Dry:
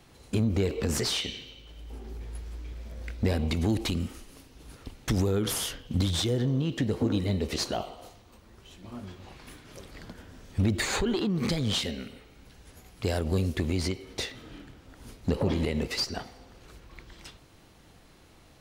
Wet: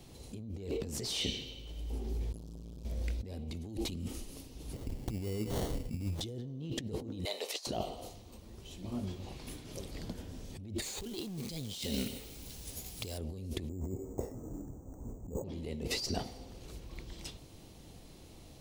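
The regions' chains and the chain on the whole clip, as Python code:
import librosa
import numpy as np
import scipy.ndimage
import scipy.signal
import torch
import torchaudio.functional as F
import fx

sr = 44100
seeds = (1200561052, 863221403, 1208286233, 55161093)

y = fx.chain(x, sr, fx.fixed_phaser(hz=400.0, stages=8),
    fx.transformer_sat(knee_hz=370.0), at=(2.32, 2.85))
y = fx.chain(y, sr, fx.median_filter(points=25),
    fx.over_compress(threshold_db=-32.0, ratio=-0.5),
    fx.sample_hold(seeds[0], rate_hz=2500.0, jitter_pct=0), at=(4.73, 6.21))
y = fx.chain(y, sr, fx.highpass(hz=650.0, slope=24),
    fx.over_compress(threshold_db=-39.0, ratio=-0.5), at=(7.25, 7.67))
y = fx.chain(y, sr, fx.high_shelf(hz=3100.0, db=10.0),
    fx.quant_companded(bits=4), at=(10.82, 13.18))
y = fx.chain(y, sr, fx.lowpass(hz=1100.0, slope=24),
    fx.resample_bad(factor=6, down='none', up='hold'), at=(13.69, 15.44))
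y = fx.peak_eq(y, sr, hz=1500.0, db=-12.5, octaves=1.4)
y = fx.over_compress(y, sr, threshold_db=-36.0, ratio=-1.0)
y = y * 10.0 ** (-2.0 / 20.0)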